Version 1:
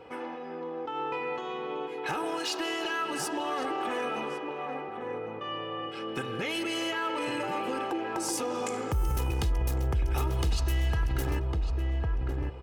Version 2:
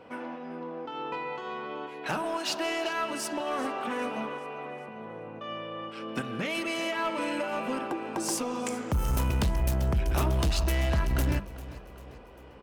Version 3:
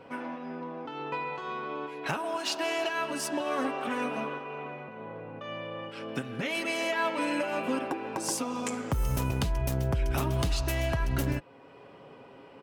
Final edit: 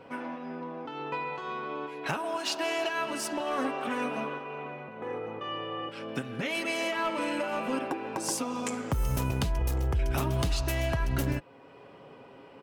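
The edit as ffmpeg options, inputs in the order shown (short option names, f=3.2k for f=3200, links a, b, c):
-filter_complex "[1:a]asplit=2[a][b];[0:a]asplit=2[c][d];[2:a]asplit=5[e][f][g][h][i];[e]atrim=end=3.072[j];[a]atrim=start=3.068:end=3.582[k];[f]atrim=start=3.578:end=5.022[l];[c]atrim=start=5.018:end=5.892[m];[g]atrim=start=5.888:end=6.882[n];[b]atrim=start=6.878:end=7.732[o];[h]atrim=start=7.728:end=9.592[p];[d]atrim=start=9.588:end=9.992[q];[i]atrim=start=9.988[r];[j][k]acrossfade=d=0.004:c1=hsin:c2=hsin[s];[s][l]acrossfade=d=0.004:c1=hsin:c2=hsin[t];[t][m]acrossfade=d=0.004:c1=hsin:c2=hsin[u];[u][n]acrossfade=d=0.004:c1=hsin:c2=hsin[v];[v][o]acrossfade=d=0.004:c1=hsin:c2=hsin[w];[w][p]acrossfade=d=0.004:c1=hsin:c2=hsin[x];[x][q]acrossfade=d=0.004:c1=hsin:c2=hsin[y];[y][r]acrossfade=d=0.004:c1=hsin:c2=hsin"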